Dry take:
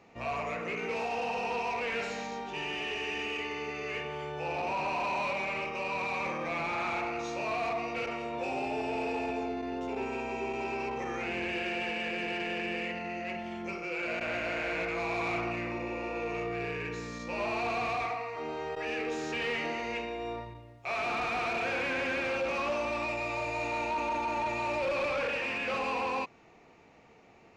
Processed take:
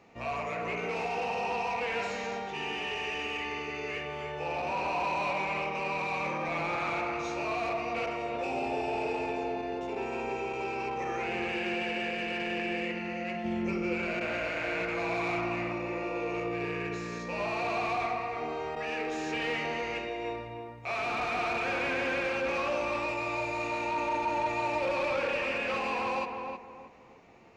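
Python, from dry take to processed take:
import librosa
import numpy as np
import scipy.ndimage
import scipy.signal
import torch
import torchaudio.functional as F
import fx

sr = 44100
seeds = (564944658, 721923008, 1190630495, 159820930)

y = fx.low_shelf(x, sr, hz=410.0, db=10.5, at=(13.44, 13.94))
y = fx.echo_filtered(y, sr, ms=314, feedback_pct=33, hz=1800.0, wet_db=-4.5)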